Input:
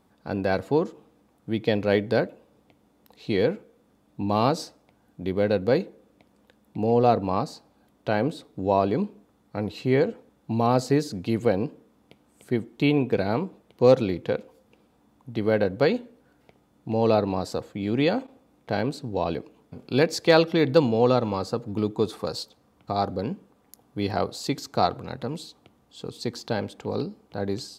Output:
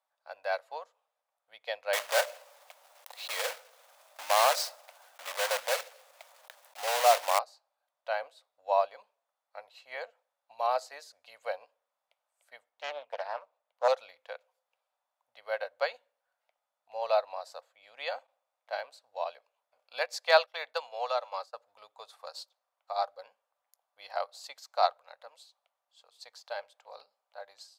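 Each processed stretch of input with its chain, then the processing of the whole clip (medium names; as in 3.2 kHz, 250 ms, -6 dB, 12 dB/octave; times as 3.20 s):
1.93–7.39 s: block-companded coder 3-bit + high-pass 180 Hz + level flattener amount 50%
12.69–13.88 s: treble shelf 2.3 kHz -6 dB + loudspeaker Doppler distortion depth 0.53 ms
20.46–21.54 s: Bessel high-pass 380 Hz + expander -32 dBFS + three bands compressed up and down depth 40%
whole clip: elliptic high-pass 580 Hz, stop band 40 dB; upward expansion 1.5:1, over -48 dBFS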